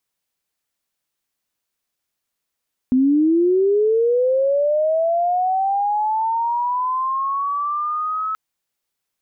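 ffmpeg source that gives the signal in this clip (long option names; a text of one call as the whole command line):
ffmpeg -f lavfi -i "aevalsrc='pow(10,(-12-8.5*t/5.43)/20)*sin(2*PI*(250*t+1050*t*t/(2*5.43)))':duration=5.43:sample_rate=44100" out.wav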